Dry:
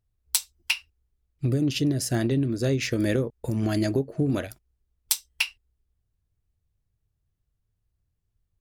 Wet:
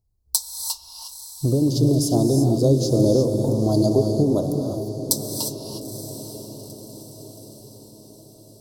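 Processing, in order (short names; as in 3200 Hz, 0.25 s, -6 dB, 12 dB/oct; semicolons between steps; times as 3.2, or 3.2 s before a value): Chebyshev band-stop 1000–4300 Hz, order 3; dynamic EQ 550 Hz, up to +6 dB, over -41 dBFS, Q 1.2; diffused feedback echo 0.914 s, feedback 53%, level -11.5 dB; non-linear reverb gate 0.38 s rising, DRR 4 dB; gain +3.5 dB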